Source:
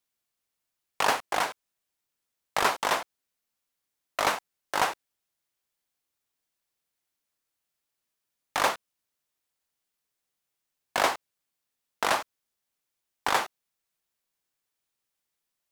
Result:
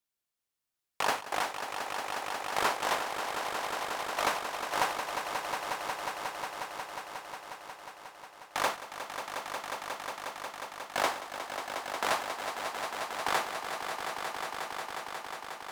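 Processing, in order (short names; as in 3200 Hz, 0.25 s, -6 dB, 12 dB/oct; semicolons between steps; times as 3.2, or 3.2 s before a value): swelling echo 0.18 s, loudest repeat 5, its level -8.5 dB; gain -5 dB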